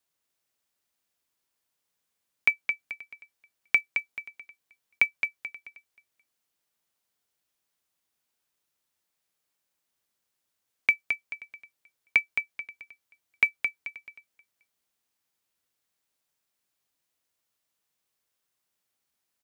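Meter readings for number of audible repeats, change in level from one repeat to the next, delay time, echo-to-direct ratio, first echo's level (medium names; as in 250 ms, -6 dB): 3, -9.5 dB, 217 ms, -6.0 dB, -6.5 dB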